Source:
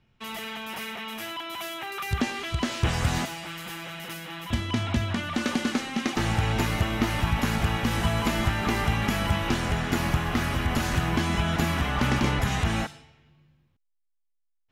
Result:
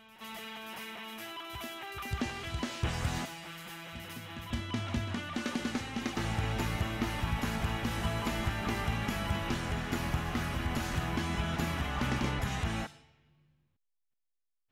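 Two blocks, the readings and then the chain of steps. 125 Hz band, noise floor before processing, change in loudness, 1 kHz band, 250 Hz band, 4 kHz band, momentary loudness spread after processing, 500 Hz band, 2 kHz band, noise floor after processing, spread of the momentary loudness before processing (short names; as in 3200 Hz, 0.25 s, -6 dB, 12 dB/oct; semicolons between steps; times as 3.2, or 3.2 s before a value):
-7.5 dB, -73 dBFS, -7.5 dB, -7.5 dB, -8.0 dB, -8.0 dB, 9 LU, -7.5 dB, -8.0 dB, -80 dBFS, 9 LU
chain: reverse echo 0.577 s -12.5 dB; gain -8 dB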